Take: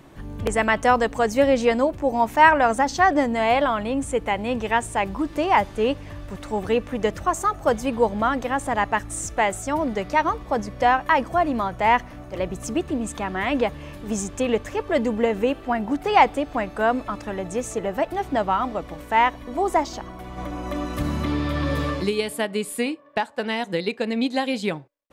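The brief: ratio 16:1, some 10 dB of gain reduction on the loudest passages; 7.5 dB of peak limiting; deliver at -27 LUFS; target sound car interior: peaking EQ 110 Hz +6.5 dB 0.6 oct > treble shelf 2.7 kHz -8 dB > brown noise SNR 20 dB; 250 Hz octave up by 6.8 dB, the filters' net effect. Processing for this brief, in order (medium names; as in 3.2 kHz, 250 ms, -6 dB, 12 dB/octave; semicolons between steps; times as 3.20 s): peaking EQ 250 Hz +7.5 dB; compression 16:1, threshold -19 dBFS; peak limiter -18 dBFS; peaking EQ 110 Hz +6.5 dB 0.6 oct; treble shelf 2.7 kHz -8 dB; brown noise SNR 20 dB; trim +0.5 dB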